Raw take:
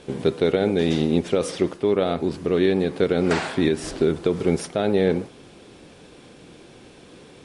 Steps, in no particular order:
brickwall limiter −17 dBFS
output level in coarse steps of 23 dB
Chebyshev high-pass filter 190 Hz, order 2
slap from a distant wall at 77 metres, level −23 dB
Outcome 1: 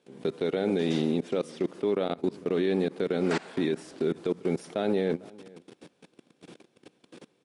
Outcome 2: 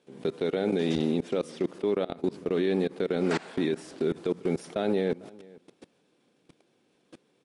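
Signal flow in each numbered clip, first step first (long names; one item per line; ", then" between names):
output level in coarse steps, then Chebyshev high-pass filter, then brickwall limiter, then slap from a distant wall
Chebyshev high-pass filter, then output level in coarse steps, then brickwall limiter, then slap from a distant wall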